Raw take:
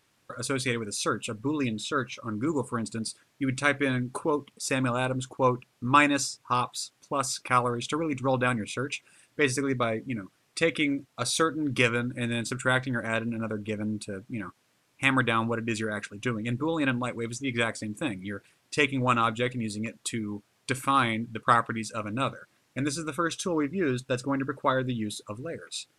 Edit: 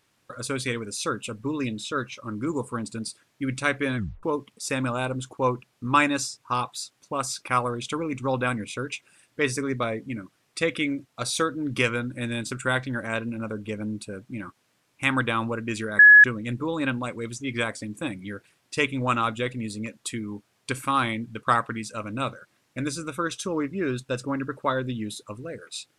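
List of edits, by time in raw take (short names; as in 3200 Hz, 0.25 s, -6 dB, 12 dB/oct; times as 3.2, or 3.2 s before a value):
3.97 tape stop 0.26 s
15.99–16.24 bleep 1690 Hz -7.5 dBFS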